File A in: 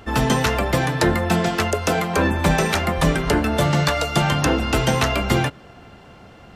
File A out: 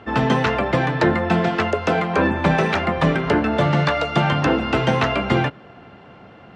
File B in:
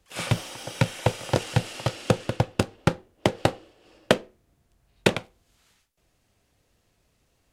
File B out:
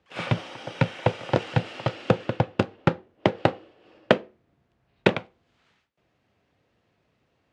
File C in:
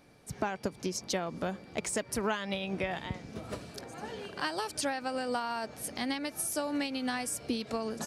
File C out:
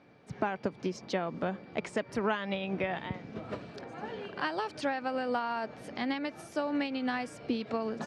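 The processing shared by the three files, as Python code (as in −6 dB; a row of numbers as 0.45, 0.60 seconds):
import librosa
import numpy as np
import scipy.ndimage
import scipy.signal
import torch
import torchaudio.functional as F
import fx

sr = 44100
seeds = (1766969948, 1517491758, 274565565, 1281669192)

y = fx.bandpass_edges(x, sr, low_hz=110.0, high_hz=2900.0)
y = y * librosa.db_to_amplitude(1.5)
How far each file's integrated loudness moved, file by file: +0.5, +0.5, 0.0 LU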